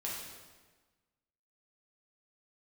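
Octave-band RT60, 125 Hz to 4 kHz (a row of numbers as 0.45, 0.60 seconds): 1.5, 1.5, 1.4, 1.3, 1.2, 1.1 seconds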